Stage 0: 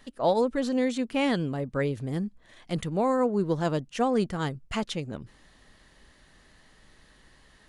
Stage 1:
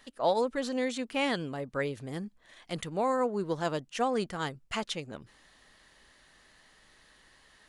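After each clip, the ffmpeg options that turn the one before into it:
-af "lowshelf=f=370:g=-10.5"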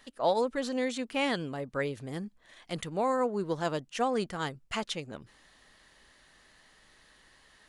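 -af anull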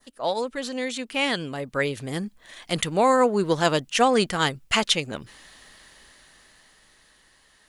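-af "adynamicequalizer=threshold=0.00398:dfrequency=2800:dqfactor=0.81:tfrequency=2800:tqfactor=0.81:attack=5:release=100:ratio=0.375:range=2.5:mode=boostabove:tftype=bell,crystalizer=i=1:c=0,dynaudnorm=f=210:g=17:m=9.5dB"

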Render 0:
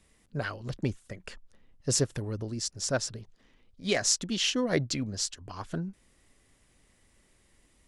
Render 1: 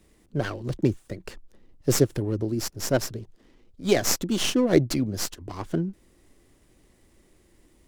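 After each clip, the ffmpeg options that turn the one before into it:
-filter_complex "[0:a]equalizer=f=340:w=3.2:g=8,acrossover=split=100|930[a][b][c];[c]aeval=exprs='max(val(0),0)':c=same[d];[a][b][d]amix=inputs=3:normalize=0,volume=5.5dB"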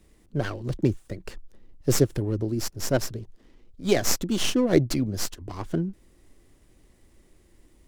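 -af "lowshelf=f=77:g=6.5,volume=-1dB"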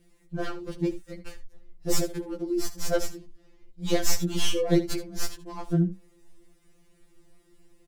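-af "aecho=1:1:74:0.188,afftfilt=real='re*2.83*eq(mod(b,8),0)':imag='im*2.83*eq(mod(b,8),0)':win_size=2048:overlap=0.75"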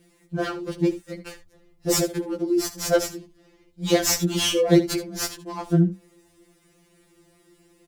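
-af "highpass=f=120:p=1,volume=6.5dB"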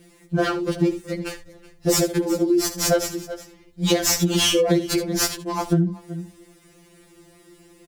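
-af "aecho=1:1:373:0.0944,acompressor=threshold=-22dB:ratio=12,volume=7dB"

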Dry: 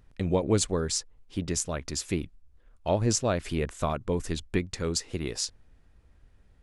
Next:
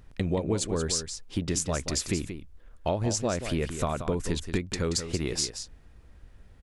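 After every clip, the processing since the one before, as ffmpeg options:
-af "acompressor=threshold=-31dB:ratio=5,aecho=1:1:180:0.335,volume=6dB"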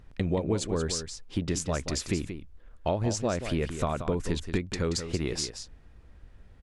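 -af "highshelf=f=7.1k:g=-9"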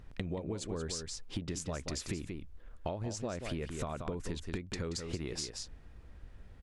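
-af "acompressor=threshold=-35dB:ratio=5"

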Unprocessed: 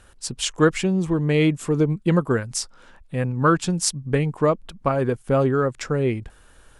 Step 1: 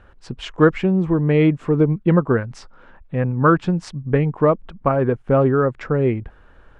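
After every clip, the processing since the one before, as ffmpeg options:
-af "lowpass=1.9k,volume=3.5dB"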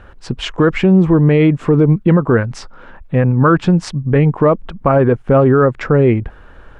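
-af "alimiter=level_in=11dB:limit=-1dB:release=50:level=0:latency=1,volume=-2dB"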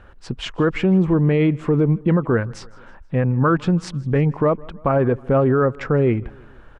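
-af "aecho=1:1:159|318|477:0.0631|0.0315|0.0158,volume=-6dB"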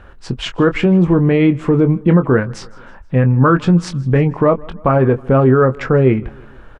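-filter_complex "[0:a]asplit=2[a][b];[b]adelay=23,volume=-9.5dB[c];[a][c]amix=inputs=2:normalize=0,volume=5dB"

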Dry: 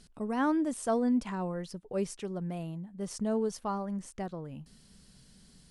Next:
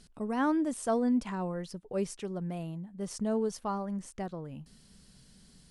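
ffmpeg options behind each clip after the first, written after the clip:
-af anull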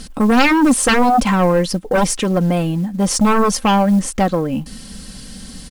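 -af "aeval=exprs='0.119*sin(PI/2*3.55*val(0)/0.119)':c=same,aecho=1:1:3.8:0.53,acrusher=bits=8:mode=log:mix=0:aa=0.000001,volume=8dB"

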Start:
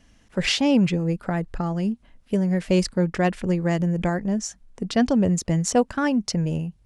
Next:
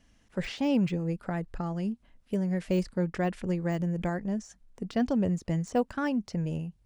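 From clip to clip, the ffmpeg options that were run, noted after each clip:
-af "deesser=0.9,volume=-7dB"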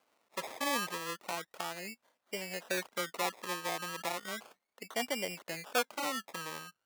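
-af "acrusher=samples=24:mix=1:aa=0.000001:lfo=1:lforange=14.4:lforate=0.34,highpass=630"

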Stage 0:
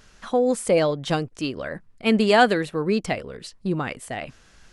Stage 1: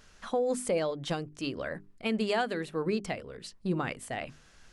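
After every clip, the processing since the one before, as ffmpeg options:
-af "bandreject=f=50:t=h:w=6,bandreject=f=100:t=h:w=6,bandreject=f=150:t=h:w=6,bandreject=f=200:t=h:w=6,bandreject=f=250:t=h:w=6,bandreject=f=300:t=h:w=6,bandreject=f=350:t=h:w=6,bandreject=f=400:t=h:w=6,alimiter=limit=-15.5dB:level=0:latency=1:release=453,volume=-4.5dB"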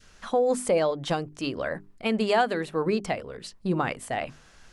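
-af "adynamicequalizer=threshold=0.00794:dfrequency=840:dqfactor=0.99:tfrequency=840:tqfactor=0.99:attack=5:release=100:ratio=0.375:range=2.5:mode=boostabove:tftype=bell,volume=3.5dB"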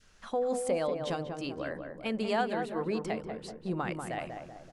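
-filter_complex "[0:a]asplit=2[a][b];[b]adelay=191,lowpass=f=1.2k:p=1,volume=-4.5dB,asplit=2[c][d];[d]adelay=191,lowpass=f=1.2k:p=1,volume=0.54,asplit=2[e][f];[f]adelay=191,lowpass=f=1.2k:p=1,volume=0.54,asplit=2[g][h];[h]adelay=191,lowpass=f=1.2k:p=1,volume=0.54,asplit=2[i][j];[j]adelay=191,lowpass=f=1.2k:p=1,volume=0.54,asplit=2[k][l];[l]adelay=191,lowpass=f=1.2k:p=1,volume=0.54,asplit=2[m][n];[n]adelay=191,lowpass=f=1.2k:p=1,volume=0.54[o];[a][c][e][g][i][k][m][o]amix=inputs=8:normalize=0,volume=-7.5dB"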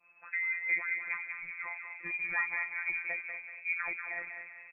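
-filter_complex "[0:a]asplit=2[a][b];[b]adelay=237,lowpass=f=1.9k:p=1,volume=-11.5dB,asplit=2[c][d];[d]adelay=237,lowpass=f=1.9k:p=1,volume=0.41,asplit=2[e][f];[f]adelay=237,lowpass=f=1.9k:p=1,volume=0.41,asplit=2[g][h];[h]adelay=237,lowpass=f=1.9k:p=1,volume=0.41[i];[a][c][e][g][i]amix=inputs=5:normalize=0,lowpass=f=2.2k:t=q:w=0.5098,lowpass=f=2.2k:t=q:w=0.6013,lowpass=f=2.2k:t=q:w=0.9,lowpass=f=2.2k:t=q:w=2.563,afreqshift=-2600,afftfilt=real='hypot(re,im)*cos(PI*b)':imag='0':win_size=1024:overlap=0.75"

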